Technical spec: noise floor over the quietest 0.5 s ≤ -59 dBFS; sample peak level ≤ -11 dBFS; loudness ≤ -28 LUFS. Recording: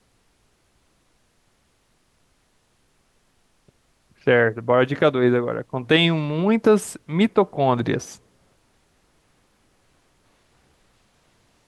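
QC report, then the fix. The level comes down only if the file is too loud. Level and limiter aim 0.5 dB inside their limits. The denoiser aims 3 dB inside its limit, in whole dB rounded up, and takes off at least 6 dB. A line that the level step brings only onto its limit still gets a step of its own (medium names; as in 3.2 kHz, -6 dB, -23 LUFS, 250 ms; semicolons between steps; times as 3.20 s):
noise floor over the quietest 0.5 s -64 dBFS: pass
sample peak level -6.0 dBFS: fail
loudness -20.0 LUFS: fail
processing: trim -8.5 dB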